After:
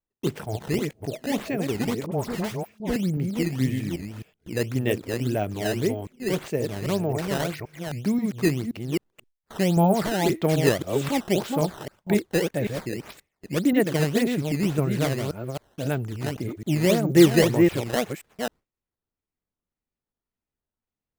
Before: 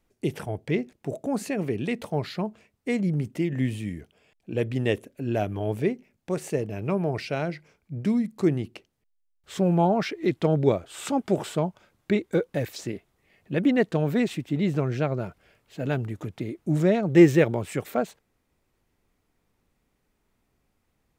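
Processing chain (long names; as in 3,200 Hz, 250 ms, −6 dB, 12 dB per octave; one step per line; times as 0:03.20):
delay that plays each chunk backwards 264 ms, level −4 dB
noise gate with hold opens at −36 dBFS
sample-and-hold swept by an LFO 11×, swing 160% 1.8 Hz
0:02.06–0:02.96: all-pass dispersion highs, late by 59 ms, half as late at 1,100 Hz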